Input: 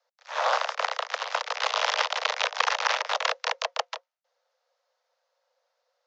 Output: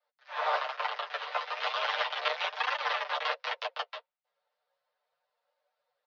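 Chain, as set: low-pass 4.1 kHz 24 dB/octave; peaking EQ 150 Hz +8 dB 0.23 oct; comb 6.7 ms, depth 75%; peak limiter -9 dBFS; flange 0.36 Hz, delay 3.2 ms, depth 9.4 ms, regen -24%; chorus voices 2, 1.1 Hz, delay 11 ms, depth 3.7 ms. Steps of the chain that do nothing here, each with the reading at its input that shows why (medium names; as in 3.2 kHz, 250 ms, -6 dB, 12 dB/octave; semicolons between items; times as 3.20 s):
peaking EQ 150 Hz: input has nothing below 380 Hz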